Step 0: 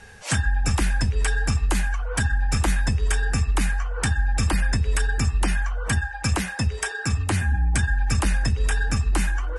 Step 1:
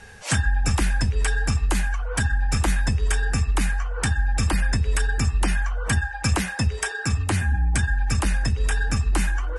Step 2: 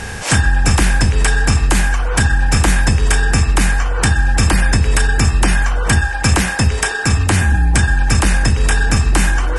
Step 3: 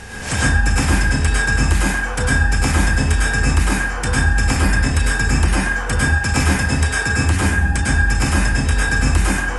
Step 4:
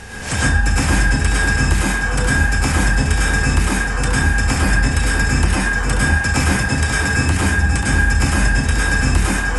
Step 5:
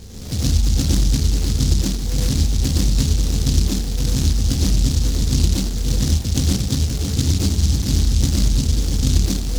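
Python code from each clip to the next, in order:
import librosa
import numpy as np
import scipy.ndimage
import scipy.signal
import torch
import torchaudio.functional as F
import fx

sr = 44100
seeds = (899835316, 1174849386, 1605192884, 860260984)

y1 = fx.rider(x, sr, range_db=10, speed_s=2.0)
y2 = fx.bin_compress(y1, sr, power=0.6)
y2 = y2 * librosa.db_to_amplitude(6.5)
y3 = fx.rev_plate(y2, sr, seeds[0], rt60_s=0.56, hf_ratio=0.6, predelay_ms=90, drr_db=-5.0)
y3 = y3 * librosa.db_to_amplitude(-8.5)
y4 = y3 + 10.0 ** (-6.5 / 20.0) * np.pad(y3, (int(536 * sr / 1000.0), 0))[:len(y3)]
y5 = scipy.ndimage.gaussian_filter1d(y4, 13.0, mode='constant')
y5 = fx.noise_mod_delay(y5, sr, seeds[1], noise_hz=5000.0, depth_ms=0.3)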